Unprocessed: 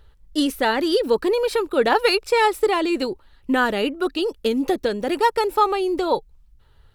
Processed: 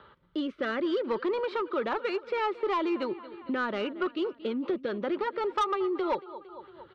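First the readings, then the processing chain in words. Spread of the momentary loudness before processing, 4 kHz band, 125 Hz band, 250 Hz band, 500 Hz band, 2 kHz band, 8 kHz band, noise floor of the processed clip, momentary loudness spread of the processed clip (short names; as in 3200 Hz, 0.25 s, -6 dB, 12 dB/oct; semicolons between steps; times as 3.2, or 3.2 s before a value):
6 LU, -14.5 dB, n/a, -8.0 dB, -9.5 dB, -11.0 dB, under -20 dB, -58 dBFS, 7 LU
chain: rotary speaker horn 0.6 Hz, later 7.5 Hz, at 3.44; in parallel at +1 dB: compressor, threshold -33 dBFS, peak gain reduction 17.5 dB; on the sum: speaker cabinet 250–2800 Hz, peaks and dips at 280 Hz -8 dB, 460 Hz -8 dB, 740 Hz -9 dB, 1200 Hz +5 dB, 1800 Hz -7 dB, 2600 Hz -8 dB; on a send: feedback echo 0.228 s, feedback 52%, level -19.5 dB; on the sum: soft clip -19 dBFS, distortion -13 dB; three-band squash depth 40%; gain -2 dB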